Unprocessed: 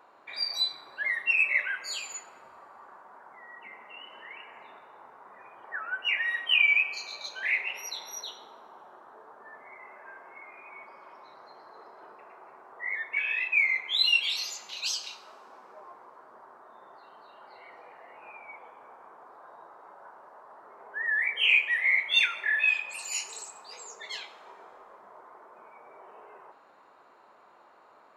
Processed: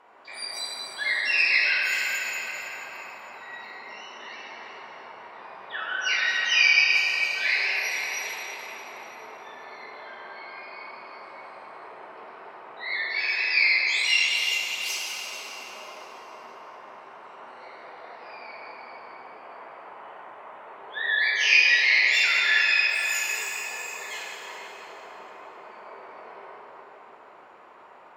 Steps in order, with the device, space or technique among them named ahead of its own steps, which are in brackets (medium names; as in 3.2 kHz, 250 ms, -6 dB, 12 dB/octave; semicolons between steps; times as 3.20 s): low-pass 9.5 kHz 12 dB/octave; peaking EQ 4.1 kHz -10.5 dB 0.67 oct; shimmer-style reverb (harmony voices +12 st -10 dB; reverberation RT60 4.9 s, pre-delay 3 ms, DRR -6 dB)